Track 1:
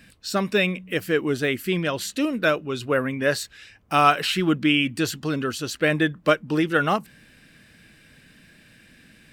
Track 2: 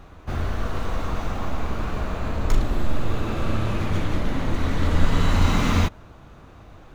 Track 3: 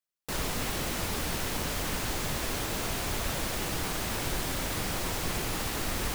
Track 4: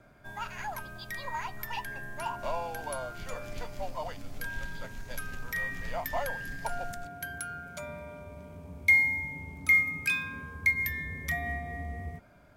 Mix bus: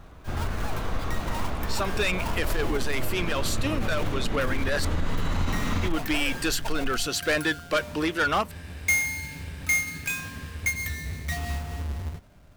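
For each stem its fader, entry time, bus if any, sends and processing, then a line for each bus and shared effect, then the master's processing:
-0.5 dB, 1.45 s, muted 4.85–5.83, no send, HPF 630 Hz 6 dB/oct; AGC gain up to 6.5 dB; soft clip -18 dBFS, distortion -8 dB
-3.5 dB, 0.00 s, no send, dry
-6.5 dB, 0.35 s, no send, LPF 2500 Hz
-4.5 dB, 0.00 s, no send, half-waves squared off; low shelf 99 Hz +10.5 dB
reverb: off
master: limiter -17 dBFS, peak gain reduction 9.5 dB

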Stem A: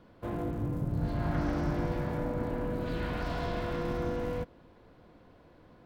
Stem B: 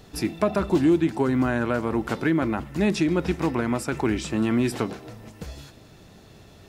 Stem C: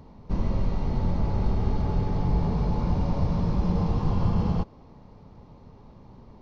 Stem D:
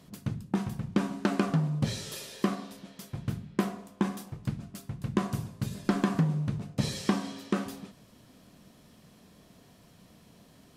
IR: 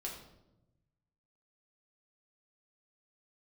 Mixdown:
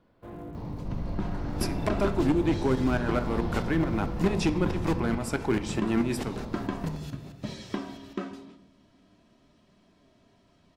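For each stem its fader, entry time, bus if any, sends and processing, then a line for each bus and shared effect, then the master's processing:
-10.0 dB, 0.00 s, send -4.5 dB, dry
-2.0 dB, 1.45 s, send -5.5 dB, tremolo saw up 4.6 Hz, depth 85%; overloaded stage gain 19 dB
-11.5 dB, 0.55 s, no send, fast leveller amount 70%
-3.0 dB, 0.65 s, send -7 dB, Bessel low-pass 4200 Hz, order 2; comb 3.1 ms, depth 45%; flange 0.44 Hz, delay 4.8 ms, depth 9.2 ms, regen +71%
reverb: on, RT60 0.95 s, pre-delay 5 ms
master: dry

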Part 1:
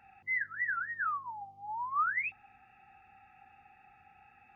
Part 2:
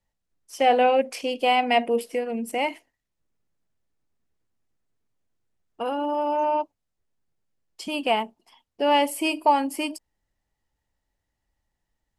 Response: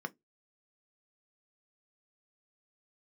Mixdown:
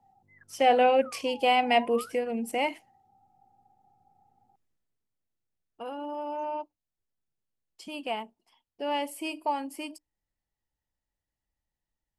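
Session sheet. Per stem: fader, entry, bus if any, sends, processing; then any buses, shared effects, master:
-0.5 dB, 0.00 s, no send, Wiener smoothing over 25 samples; Chebyshev band-pass 100–960 Hz, order 3
4.62 s -2 dB -> 5.07 s -9.5 dB, 0.00 s, send -22.5 dB, dry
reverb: on, RT60 0.15 s, pre-delay 3 ms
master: dry

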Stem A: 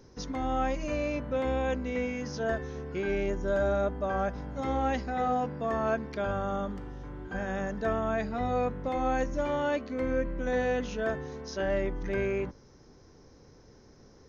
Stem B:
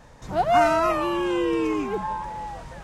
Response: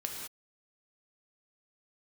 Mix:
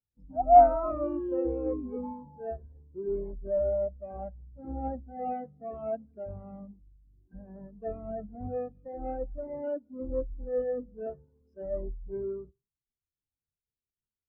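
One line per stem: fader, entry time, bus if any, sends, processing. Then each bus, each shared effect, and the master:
0.0 dB, 0.00 s, send -11.5 dB, half-waves squared off; spectral gate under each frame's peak -20 dB strong
-1.0 dB, 0.00 s, no send, dry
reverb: on, pre-delay 3 ms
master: spectral expander 2.5:1

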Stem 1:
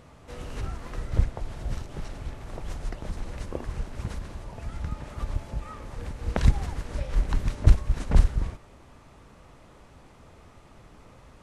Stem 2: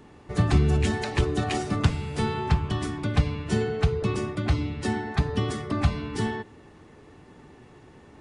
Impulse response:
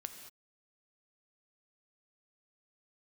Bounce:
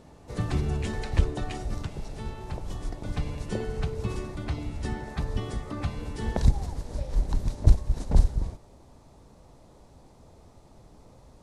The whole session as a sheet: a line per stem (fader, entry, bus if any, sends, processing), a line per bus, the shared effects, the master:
-1.0 dB, 0.00 s, no send, band shelf 1900 Hz -9.5 dB
1.38 s -7.5 dB -> 1.81 s -14.5 dB -> 2.94 s -14.5 dB -> 3.25 s -8 dB, 0.00 s, no send, dry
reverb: off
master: dry

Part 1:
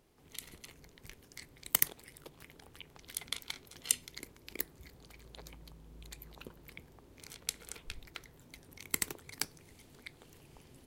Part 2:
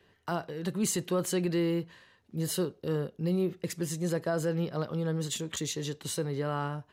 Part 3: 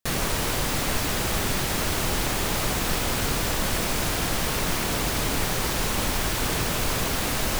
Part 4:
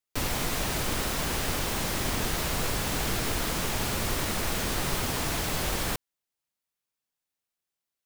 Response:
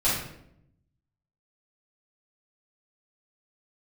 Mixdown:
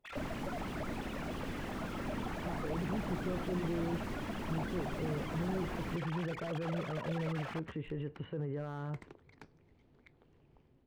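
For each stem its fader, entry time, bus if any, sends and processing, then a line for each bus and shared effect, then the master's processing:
-9.5 dB, 0.00 s, bus A, no send, AGC gain up to 4 dB
+2.0 dB, 2.15 s, bus A, no send, Chebyshev low-pass 2900 Hz, order 5
-13.5 dB, 0.00 s, no bus, no send, sine-wave speech; tape flanging out of phase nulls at 0.53 Hz, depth 5.5 ms
-12.5 dB, 0.00 s, no bus, no send, bell 240 Hz +9.5 dB 1.3 oct
bus A: 0.0 dB, tape spacing loss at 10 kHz 36 dB; limiter -30.5 dBFS, peak gain reduction 11 dB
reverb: off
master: slew limiter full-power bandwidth 11 Hz

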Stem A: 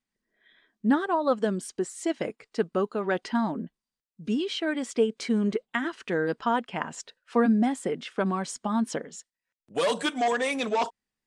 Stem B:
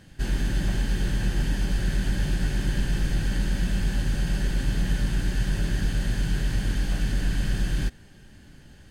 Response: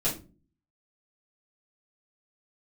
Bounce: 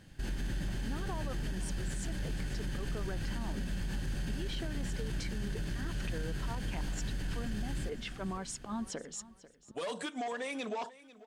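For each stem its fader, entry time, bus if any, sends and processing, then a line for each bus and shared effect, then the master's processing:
+2.5 dB, 0.00 s, no send, echo send -19 dB, auto swell 0.232 s; compressor 10:1, threshold -37 dBFS, peak gain reduction 18 dB
-5.5 dB, 0.00 s, no send, echo send -14.5 dB, dry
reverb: off
echo: feedback echo 0.493 s, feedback 30%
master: limiter -28.5 dBFS, peak gain reduction 10.5 dB

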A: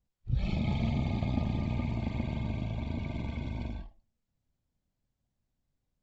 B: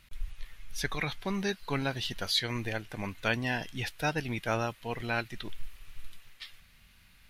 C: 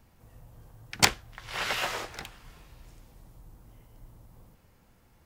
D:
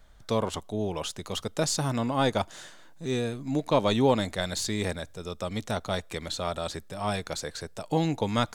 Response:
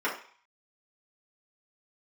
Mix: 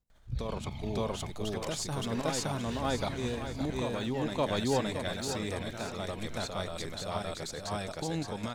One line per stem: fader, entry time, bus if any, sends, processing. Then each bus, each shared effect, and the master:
-3.0 dB, 0.00 s, muted 1.31–2.66, bus A, no send, echo send -20 dB, tone controls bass -3 dB, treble +6 dB; phaser 0.42 Hz, delay 1.5 ms, feedback 48%
-8.5 dB, 0.70 s, bus B, no send, echo send -6.5 dB, de-esser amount 100%
-13.5 dB, 0.60 s, bus B, no send, echo send -19.5 dB, dry
-1.5 dB, 0.10 s, bus A, no send, echo send -5.5 dB, dry
bus A: 0.0 dB, level quantiser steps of 10 dB; limiter -25 dBFS, peak gain reduction 8.5 dB
bus B: 0.0 dB, compressor, threshold -42 dBFS, peak gain reduction 14.5 dB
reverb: off
echo: feedback echo 0.566 s, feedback 32%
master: dry

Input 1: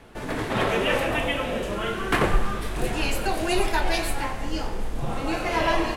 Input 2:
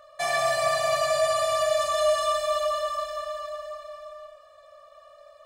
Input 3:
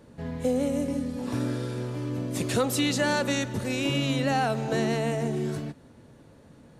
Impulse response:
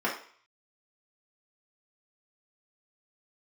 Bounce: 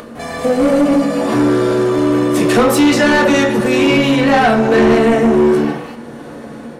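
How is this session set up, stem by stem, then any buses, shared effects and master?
-7.0 dB, 0.00 s, bus A, send -10.5 dB, high shelf 11000 Hz +10.5 dB; ring modulator 150 Hz
-2.0 dB, 0.00 s, no bus, no send, dry
+1.5 dB, 0.00 s, bus A, send -4.5 dB, AGC gain up to 11 dB
bus A: 0.0 dB, compressor, threshold -21 dBFS, peak gain reduction 12 dB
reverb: on, RT60 0.50 s, pre-delay 3 ms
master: upward compressor, threshold -24 dBFS; soft clip -6.5 dBFS, distortion -11 dB

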